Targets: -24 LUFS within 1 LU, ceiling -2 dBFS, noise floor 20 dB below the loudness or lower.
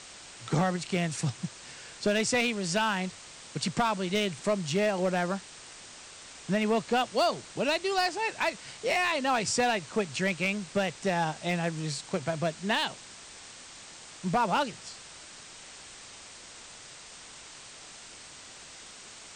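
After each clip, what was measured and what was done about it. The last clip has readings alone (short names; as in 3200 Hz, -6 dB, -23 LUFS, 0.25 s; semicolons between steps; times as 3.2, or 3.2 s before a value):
clipped 0.5%; flat tops at -19.0 dBFS; noise floor -48 dBFS; noise floor target -49 dBFS; loudness -29.0 LUFS; peak -19.0 dBFS; loudness target -24.0 LUFS
-> clip repair -19 dBFS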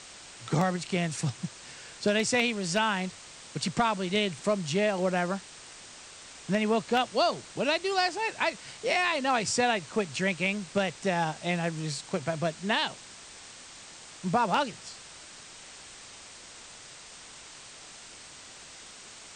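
clipped 0.0%; noise floor -48 dBFS; noise floor target -49 dBFS
-> noise print and reduce 6 dB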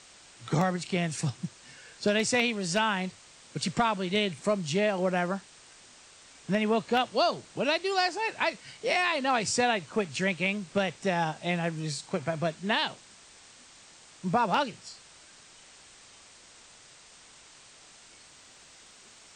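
noise floor -54 dBFS; loudness -28.5 LUFS; peak -10.0 dBFS; loudness target -24.0 LUFS
-> gain +4.5 dB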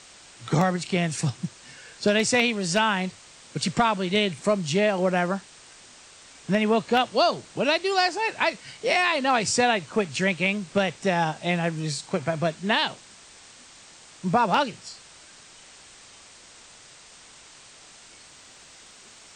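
loudness -24.0 LUFS; peak -5.5 dBFS; noise floor -50 dBFS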